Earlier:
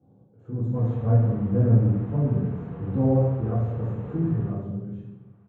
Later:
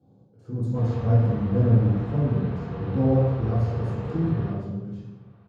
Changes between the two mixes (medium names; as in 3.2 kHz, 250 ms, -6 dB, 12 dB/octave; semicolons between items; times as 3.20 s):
background: send +6.5 dB; master: remove boxcar filter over 9 samples